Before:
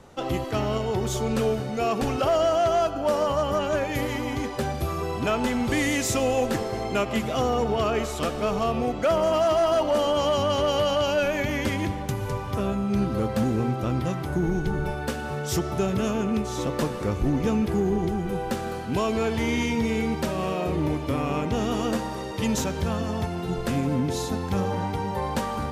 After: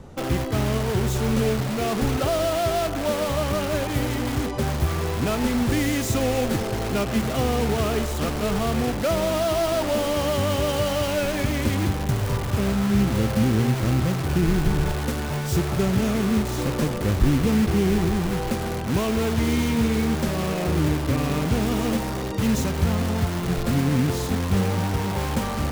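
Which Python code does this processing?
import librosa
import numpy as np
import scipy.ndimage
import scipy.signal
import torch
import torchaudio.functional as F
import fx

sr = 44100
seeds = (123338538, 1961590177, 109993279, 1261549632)

p1 = fx.low_shelf(x, sr, hz=330.0, db=12.0)
p2 = (np.mod(10.0 ** (21.0 / 20.0) * p1 + 1.0, 2.0) - 1.0) / 10.0 ** (21.0 / 20.0)
p3 = p1 + F.gain(torch.from_numpy(p2), -3.5).numpy()
y = F.gain(torch.from_numpy(p3), -4.5).numpy()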